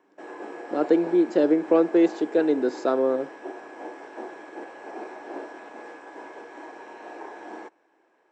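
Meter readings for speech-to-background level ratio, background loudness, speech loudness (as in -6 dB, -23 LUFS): 17.5 dB, -40.0 LUFS, -22.5 LUFS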